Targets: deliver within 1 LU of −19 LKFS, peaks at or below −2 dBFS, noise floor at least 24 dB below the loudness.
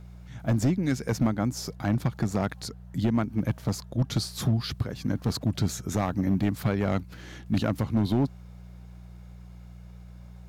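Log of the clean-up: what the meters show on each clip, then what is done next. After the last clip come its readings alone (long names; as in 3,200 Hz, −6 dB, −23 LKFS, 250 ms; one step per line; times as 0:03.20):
share of clipped samples 1.3%; peaks flattened at −17.5 dBFS; mains hum 60 Hz; hum harmonics up to 180 Hz; level of the hum −44 dBFS; integrated loudness −28.0 LKFS; sample peak −17.5 dBFS; target loudness −19.0 LKFS
→ clipped peaks rebuilt −17.5 dBFS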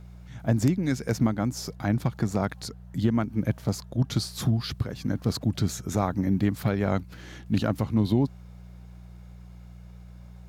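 share of clipped samples 0.0%; mains hum 60 Hz; hum harmonics up to 180 Hz; level of the hum −43 dBFS
→ hum removal 60 Hz, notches 3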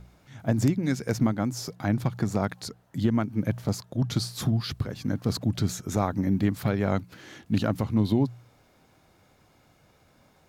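mains hum none found; integrated loudness −27.5 LKFS; sample peak −9.5 dBFS; target loudness −19.0 LKFS
→ level +8.5 dB
brickwall limiter −2 dBFS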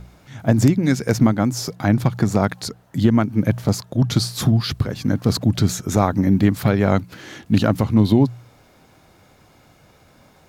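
integrated loudness −19.0 LKFS; sample peak −2.0 dBFS; background noise floor −53 dBFS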